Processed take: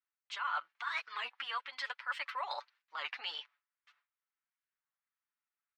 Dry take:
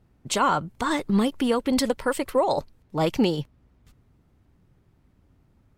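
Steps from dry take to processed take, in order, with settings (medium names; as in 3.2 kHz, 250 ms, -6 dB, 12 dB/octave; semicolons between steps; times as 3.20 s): high-pass 1.3 kHz 24 dB/octave; gate with hold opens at -54 dBFS; treble shelf 4.5 kHz -4.5 dB; comb 6.9 ms, depth 65%; reverse; compression 6:1, threshold -37 dBFS, peak gain reduction 14.5 dB; reverse; distance through air 240 m; warped record 33 1/3 rpm, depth 250 cents; trim +4.5 dB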